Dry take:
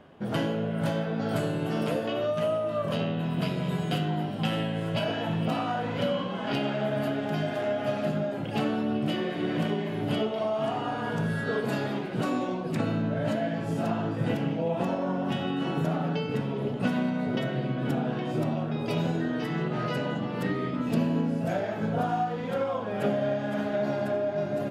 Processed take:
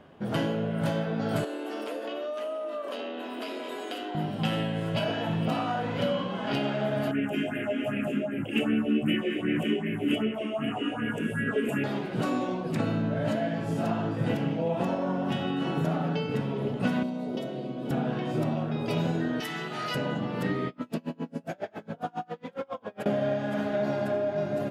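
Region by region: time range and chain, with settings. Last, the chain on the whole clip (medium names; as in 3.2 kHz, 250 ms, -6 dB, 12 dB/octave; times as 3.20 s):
1.44–4.15 s: steep high-pass 250 Hz 72 dB/octave + compression 4:1, threshold -31 dBFS
7.11–11.84 s: FFT filter 170 Hz 0 dB, 240 Hz +8 dB, 900 Hz -3 dB, 2.8 kHz +10 dB, 4.2 kHz -22 dB, 7.7 kHz +2 dB + phase shifter stages 4, 2.6 Hz, lowest notch 110–1000 Hz
17.03–17.91 s: high-pass 250 Hz + peaking EQ 1.7 kHz -14.5 dB 1.4 oct
19.40–19.95 s: tilt EQ +4 dB/octave + comb of notches 540 Hz
20.68–23.06 s: peaking EQ 99 Hz -9 dB 1.3 oct + logarithmic tremolo 7.3 Hz, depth 33 dB
whole clip: none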